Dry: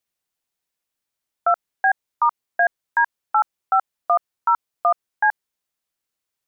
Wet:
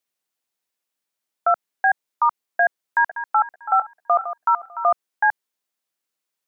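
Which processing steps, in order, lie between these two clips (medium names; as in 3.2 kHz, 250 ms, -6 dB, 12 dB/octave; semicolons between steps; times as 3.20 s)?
2.66–4.89 s: backward echo that repeats 222 ms, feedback 43%, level -11.5 dB; high-pass 180 Hz 12 dB/octave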